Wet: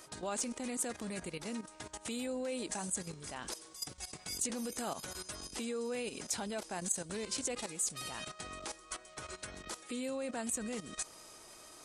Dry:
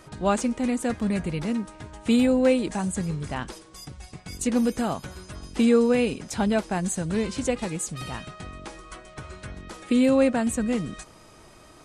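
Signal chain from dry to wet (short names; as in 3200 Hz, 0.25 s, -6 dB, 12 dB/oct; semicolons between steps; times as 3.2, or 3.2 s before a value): level quantiser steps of 14 dB; limiter -28.5 dBFS, peak gain reduction 10.5 dB; tone controls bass -11 dB, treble +10 dB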